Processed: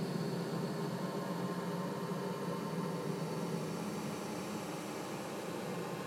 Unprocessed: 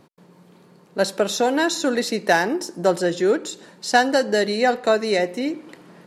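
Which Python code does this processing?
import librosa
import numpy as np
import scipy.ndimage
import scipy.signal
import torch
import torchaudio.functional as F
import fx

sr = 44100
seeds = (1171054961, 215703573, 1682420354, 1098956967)

y = fx.paulstretch(x, sr, seeds[0], factor=47.0, window_s=0.1, from_s=0.77)
y = y * 10.0 ** (13.5 / 20.0)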